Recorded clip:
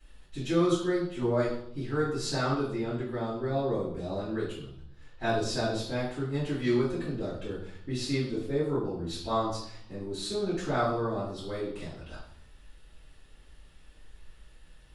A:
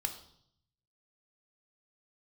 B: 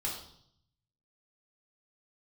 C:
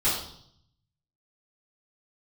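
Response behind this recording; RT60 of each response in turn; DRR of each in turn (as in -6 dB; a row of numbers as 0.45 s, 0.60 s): C; 0.65 s, 0.65 s, 0.65 s; 5.0 dB, -4.0 dB, -12.0 dB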